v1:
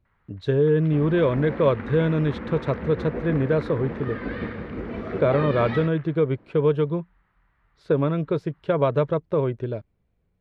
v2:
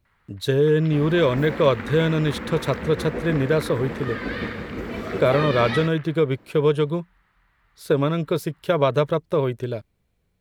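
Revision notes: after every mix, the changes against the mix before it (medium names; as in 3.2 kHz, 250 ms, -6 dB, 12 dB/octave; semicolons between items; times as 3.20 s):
master: remove tape spacing loss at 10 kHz 30 dB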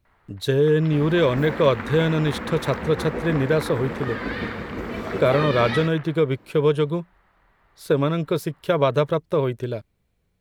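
first sound: remove high-pass 1.3 kHz 12 dB/octave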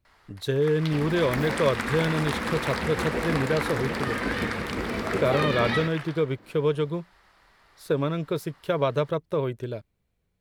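speech -5.0 dB; first sound: remove distance through air 460 m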